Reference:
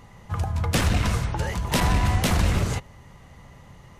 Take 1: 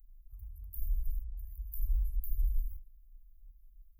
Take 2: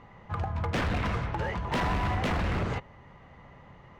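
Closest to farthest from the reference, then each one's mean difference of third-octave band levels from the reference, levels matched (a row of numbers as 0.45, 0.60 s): 2, 1; 4.5, 20.0 dB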